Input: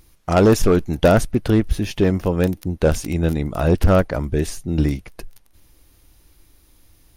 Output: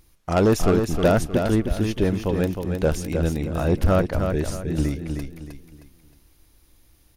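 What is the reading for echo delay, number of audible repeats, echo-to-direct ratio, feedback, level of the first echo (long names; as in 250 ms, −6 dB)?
312 ms, 4, −5.5 dB, 34%, −6.0 dB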